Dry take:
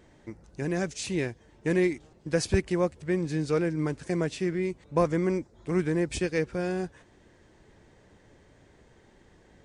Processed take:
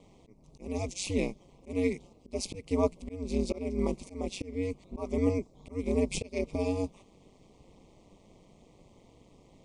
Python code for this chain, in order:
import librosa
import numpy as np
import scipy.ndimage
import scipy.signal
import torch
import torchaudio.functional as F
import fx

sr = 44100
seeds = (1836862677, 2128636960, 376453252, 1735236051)

y = scipy.signal.sosfilt(scipy.signal.cheby1(3, 1.0, [1100.0, 2200.0], 'bandstop', fs=sr, output='sos'), x)
y = fx.auto_swell(y, sr, attack_ms=271.0)
y = y * np.sin(2.0 * np.pi * 96.0 * np.arange(len(y)) / sr)
y = y * librosa.db_to_amplitude(3.0)